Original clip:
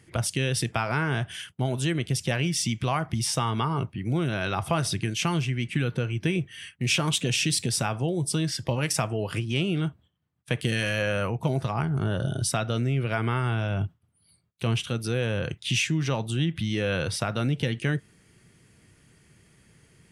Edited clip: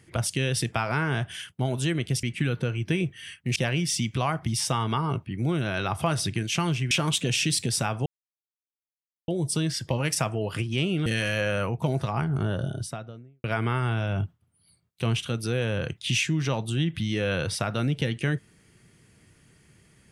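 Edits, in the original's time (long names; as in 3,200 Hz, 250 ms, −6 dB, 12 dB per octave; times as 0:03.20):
0:05.58–0:06.91: move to 0:02.23
0:08.06: splice in silence 1.22 s
0:09.84–0:10.67: remove
0:11.96–0:13.05: fade out and dull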